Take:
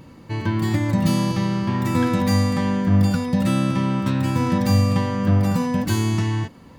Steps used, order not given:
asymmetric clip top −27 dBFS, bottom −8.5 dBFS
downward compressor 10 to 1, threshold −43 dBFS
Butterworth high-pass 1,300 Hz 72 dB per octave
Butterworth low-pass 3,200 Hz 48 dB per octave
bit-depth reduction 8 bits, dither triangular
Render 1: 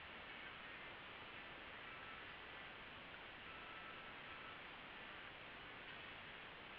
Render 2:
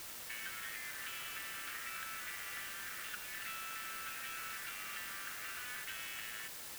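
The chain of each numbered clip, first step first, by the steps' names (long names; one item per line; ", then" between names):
asymmetric clip, then downward compressor, then Butterworth high-pass, then bit-depth reduction, then Butterworth low-pass
Butterworth low-pass, then asymmetric clip, then Butterworth high-pass, then downward compressor, then bit-depth reduction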